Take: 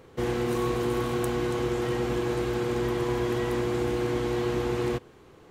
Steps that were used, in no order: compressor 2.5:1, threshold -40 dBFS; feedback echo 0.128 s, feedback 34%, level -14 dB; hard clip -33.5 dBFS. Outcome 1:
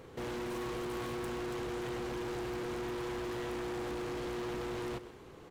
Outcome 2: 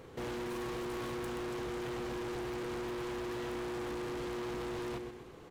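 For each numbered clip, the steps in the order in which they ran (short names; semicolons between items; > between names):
hard clip > compressor > feedback echo; feedback echo > hard clip > compressor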